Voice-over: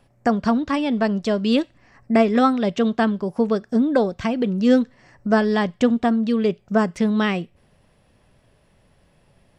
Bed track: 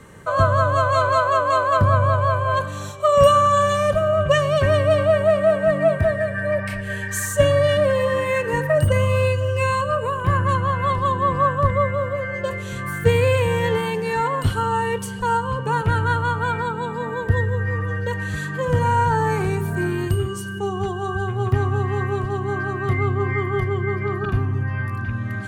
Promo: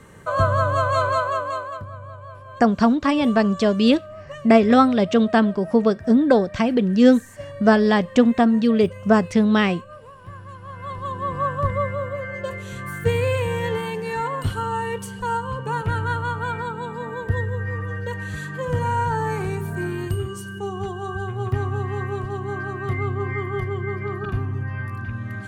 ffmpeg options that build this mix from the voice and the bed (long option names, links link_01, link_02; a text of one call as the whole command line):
ffmpeg -i stem1.wav -i stem2.wav -filter_complex "[0:a]adelay=2350,volume=2.5dB[link_01];[1:a]volume=14dB,afade=type=out:start_time=1.04:duration=0.81:silence=0.125893,afade=type=in:start_time=10.58:duration=1.02:silence=0.158489[link_02];[link_01][link_02]amix=inputs=2:normalize=0" out.wav